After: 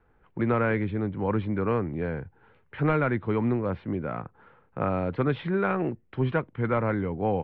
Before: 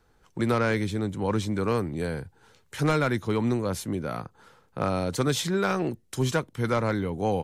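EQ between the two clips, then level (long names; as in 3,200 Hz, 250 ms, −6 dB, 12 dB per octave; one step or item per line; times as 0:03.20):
inverse Chebyshev low-pass filter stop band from 6,300 Hz, stop band 50 dB
high-frequency loss of the air 66 metres
0.0 dB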